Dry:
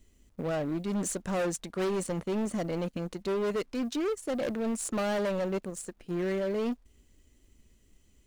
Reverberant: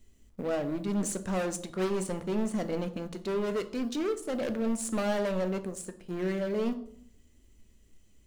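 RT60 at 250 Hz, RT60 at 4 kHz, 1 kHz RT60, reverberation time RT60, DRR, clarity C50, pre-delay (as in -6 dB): 0.90 s, 0.40 s, 0.55 s, 0.65 s, 9.0 dB, 14.5 dB, 5 ms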